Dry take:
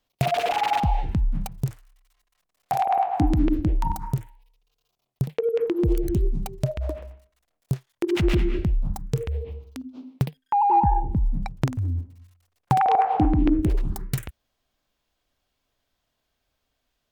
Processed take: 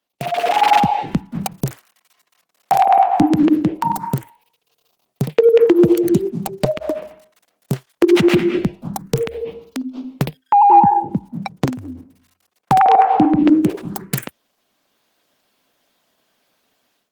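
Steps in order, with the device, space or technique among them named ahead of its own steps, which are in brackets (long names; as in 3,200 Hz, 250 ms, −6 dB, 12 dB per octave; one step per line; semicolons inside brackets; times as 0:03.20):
video call (high-pass filter 170 Hz 24 dB per octave; automatic gain control gain up to 15 dB; Opus 20 kbit/s 48,000 Hz)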